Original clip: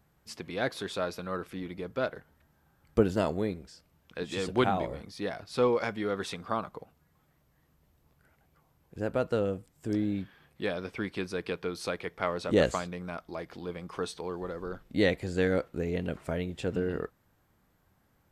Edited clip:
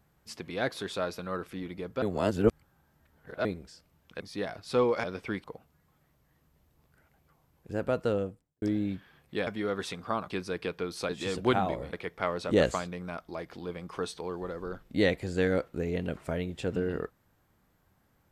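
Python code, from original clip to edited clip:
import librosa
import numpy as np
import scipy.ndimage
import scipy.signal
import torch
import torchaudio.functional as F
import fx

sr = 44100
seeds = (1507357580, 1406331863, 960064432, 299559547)

y = fx.studio_fade_out(x, sr, start_s=9.39, length_s=0.5)
y = fx.edit(y, sr, fx.reverse_span(start_s=2.02, length_s=1.43),
    fx.move(start_s=4.2, length_s=0.84, to_s=11.93),
    fx.swap(start_s=5.88, length_s=0.83, other_s=10.74, other_length_s=0.4), tone=tone)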